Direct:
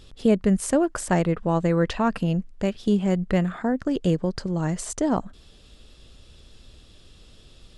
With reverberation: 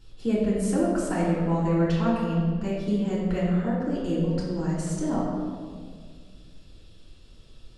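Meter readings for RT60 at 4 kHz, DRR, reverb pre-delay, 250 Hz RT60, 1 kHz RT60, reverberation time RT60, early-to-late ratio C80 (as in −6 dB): 1.2 s, −8.5 dB, 3 ms, 2.3 s, 1.6 s, 1.9 s, 2.0 dB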